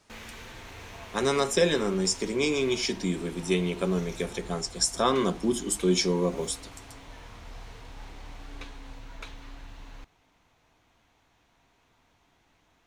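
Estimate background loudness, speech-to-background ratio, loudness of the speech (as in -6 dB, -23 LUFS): -45.5 LUFS, 18.5 dB, -27.0 LUFS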